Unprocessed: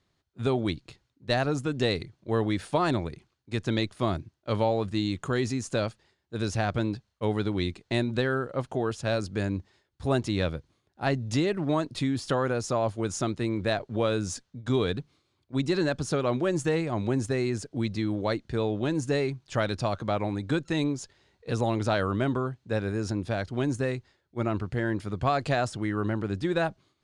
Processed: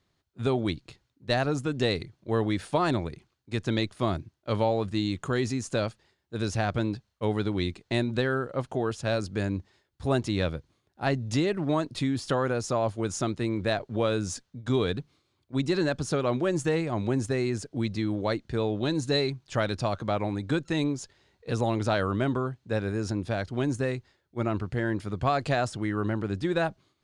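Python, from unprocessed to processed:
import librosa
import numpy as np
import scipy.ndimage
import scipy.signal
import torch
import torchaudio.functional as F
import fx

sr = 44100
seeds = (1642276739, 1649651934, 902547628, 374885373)

y = fx.peak_eq(x, sr, hz=4000.0, db=12.5, octaves=0.22, at=(18.8, 19.3))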